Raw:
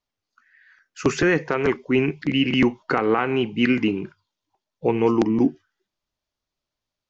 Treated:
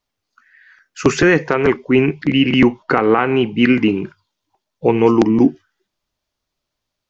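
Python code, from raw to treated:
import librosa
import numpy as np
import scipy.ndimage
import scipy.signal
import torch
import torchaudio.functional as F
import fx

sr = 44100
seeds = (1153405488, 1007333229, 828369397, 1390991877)

y = fx.high_shelf(x, sr, hz=5500.0, db=-9.0, at=(1.53, 3.89))
y = y * 10.0 ** (6.5 / 20.0)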